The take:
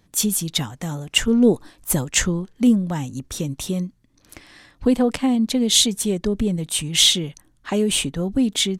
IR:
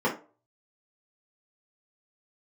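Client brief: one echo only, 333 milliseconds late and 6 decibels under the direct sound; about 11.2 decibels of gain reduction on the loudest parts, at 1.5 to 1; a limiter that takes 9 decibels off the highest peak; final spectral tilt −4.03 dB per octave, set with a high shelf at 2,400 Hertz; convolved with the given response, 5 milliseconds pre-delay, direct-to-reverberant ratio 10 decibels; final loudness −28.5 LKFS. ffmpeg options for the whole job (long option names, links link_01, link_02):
-filter_complex "[0:a]highshelf=frequency=2400:gain=3.5,acompressor=threshold=-41dB:ratio=1.5,alimiter=limit=-19.5dB:level=0:latency=1,aecho=1:1:333:0.501,asplit=2[link_01][link_02];[1:a]atrim=start_sample=2205,adelay=5[link_03];[link_02][link_03]afir=irnorm=-1:irlink=0,volume=-23dB[link_04];[link_01][link_04]amix=inputs=2:normalize=0,volume=0.5dB"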